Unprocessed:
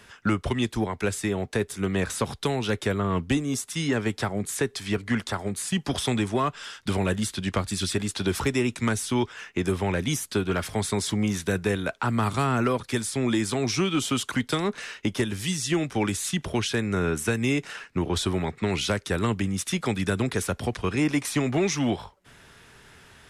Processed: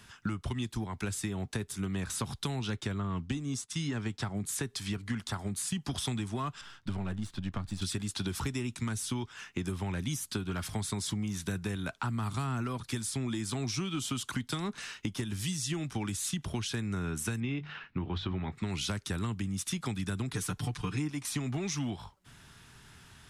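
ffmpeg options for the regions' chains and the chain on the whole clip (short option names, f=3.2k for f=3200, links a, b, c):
-filter_complex "[0:a]asettb=1/sr,asplit=3[a][b][c];[a]atrim=end=2.604[d];[b]atrim=start=2.6:end=4.36,asetpts=PTS-STARTPTS,afade=t=in:d=0.004:c=qsin,afade=t=out:st=1.756:d=0.004:c=qsin,lowpass=8k,agate=range=-33dB:threshold=-39dB:ratio=3:release=100:detection=peak[e];[c]atrim=start=4.356[f];[d][e]acrossfade=d=0.004:c1=hsin:c2=qsin[g];[g][f]acrossfade=d=0.004:c1=qsin:c2=hsin,asettb=1/sr,asplit=3[h][i][j];[h]atrim=end=6.614[k];[i]atrim=start=6.61:end=7.82,asetpts=PTS-STARTPTS,afade=t=in:d=0.004:c=qsin,afade=t=out:st=1.206:d=0.004:c=qsin,aeval=exprs='if(lt(val(0),0),0.447*val(0),val(0))':c=same,lowpass=f=1.8k:p=1[l];[j]atrim=start=7.816[m];[k][l]acrossfade=d=0.004:c1=hsin:c2=qsin[n];[n][m]acrossfade=d=0.004:c1=qsin:c2=hsin,asettb=1/sr,asplit=3[o][p][q];[o]atrim=end=17.404[r];[p]atrim=start=17.4:end=18.52,asetpts=PTS-STARTPTS,afade=t=in:d=0.004:c=qsin,afade=t=out:st=1.116:d=0.004:c=qsin,lowpass=f=3.5k:w=0.5412,lowpass=f=3.5k:w=1.3066,bandreject=f=50:t=h:w=6,bandreject=f=100:t=h:w=6,bandreject=f=150:t=h:w=6,bandreject=f=200:t=h:w=6,asplit=2[s][t];[t]adelay=21,volume=-13dB[u];[s][u]amix=inputs=2:normalize=0,atrim=end_sample=49392[v];[q]atrim=start=18.516[w];[r][v]acrossfade=d=0.004:c1=hsin:c2=qsin[x];[x][w]acrossfade=d=0.004:c1=qsin:c2=hsin,asettb=1/sr,asplit=3[y][z][aa];[y]atrim=end=20.334[ab];[z]atrim=start=20.33:end=21.1,asetpts=PTS-STARTPTS,afade=t=in:d=0.004:c=qsin,afade=t=out:st=0.766:d=0.004:c=qsin,equalizer=f=610:t=o:w=0.3:g=-9,aecho=1:1:6.7:0.98,atrim=end_sample=33957[ac];[aa]atrim=start=21.096[ad];[ab][ac]acrossfade=d=0.004:c1=hsin:c2=qsin[ae];[ae][ad]acrossfade=d=0.004:c1=qsin:c2=hsin,equalizer=f=125:t=o:w=1:g=3,equalizer=f=500:t=o:w=1:g=-11,equalizer=f=2k:t=o:w=1:g=-5,acompressor=threshold=-29dB:ratio=6,volume=-1.5dB"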